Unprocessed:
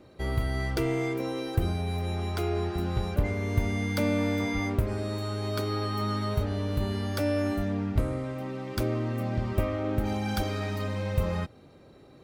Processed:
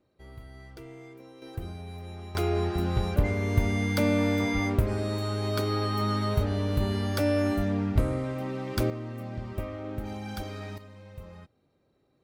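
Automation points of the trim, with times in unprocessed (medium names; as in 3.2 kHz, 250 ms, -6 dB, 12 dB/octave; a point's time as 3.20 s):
-17.5 dB
from 1.42 s -10 dB
from 2.35 s +2 dB
from 8.90 s -7 dB
from 10.78 s -17 dB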